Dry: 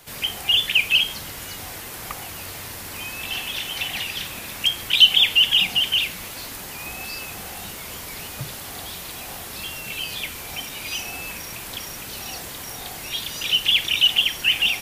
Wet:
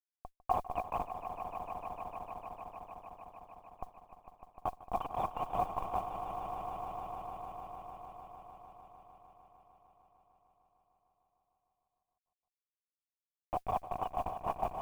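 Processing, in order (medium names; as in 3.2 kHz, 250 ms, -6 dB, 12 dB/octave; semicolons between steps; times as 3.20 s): Schmitt trigger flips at -13 dBFS; cascade formant filter a; echo with a slow build-up 151 ms, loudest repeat 5, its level -11.5 dB; modulation noise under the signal 30 dB; trim +12 dB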